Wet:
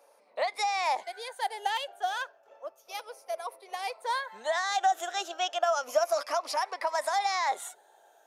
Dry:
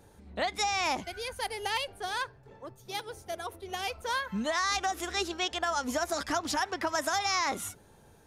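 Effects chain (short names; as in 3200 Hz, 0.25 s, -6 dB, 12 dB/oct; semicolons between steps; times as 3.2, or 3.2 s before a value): moving spectral ripple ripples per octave 0.92, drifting -0.32 Hz, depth 8 dB; ladder high-pass 550 Hz, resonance 55%; gain +6.5 dB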